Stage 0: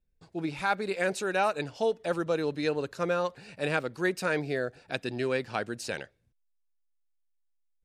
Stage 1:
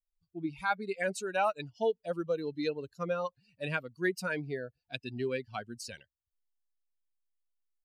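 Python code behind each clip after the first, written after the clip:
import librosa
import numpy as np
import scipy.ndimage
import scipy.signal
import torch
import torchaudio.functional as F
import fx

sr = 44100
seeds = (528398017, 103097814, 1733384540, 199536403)

y = fx.bin_expand(x, sr, power=2.0)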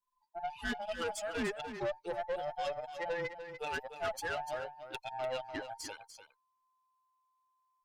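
y = fx.band_invert(x, sr, width_hz=1000)
y = fx.tube_stage(y, sr, drive_db=31.0, bias=0.35)
y = y + 10.0 ** (-10.0 / 20.0) * np.pad(y, (int(295 * sr / 1000.0), 0))[:len(y)]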